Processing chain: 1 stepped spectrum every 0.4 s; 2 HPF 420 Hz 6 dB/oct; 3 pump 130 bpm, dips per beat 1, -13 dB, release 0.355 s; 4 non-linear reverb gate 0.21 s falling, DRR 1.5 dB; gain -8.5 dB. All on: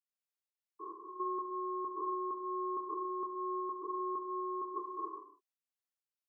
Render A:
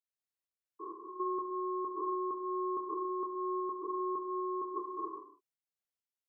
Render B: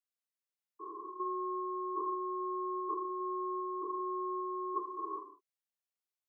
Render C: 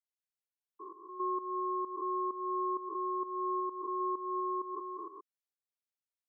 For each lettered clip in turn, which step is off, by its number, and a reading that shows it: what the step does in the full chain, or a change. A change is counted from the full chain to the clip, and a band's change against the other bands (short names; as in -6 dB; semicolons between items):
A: 2, loudness change +2.0 LU; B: 3, crest factor change +2.0 dB; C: 4, momentary loudness spread change +5 LU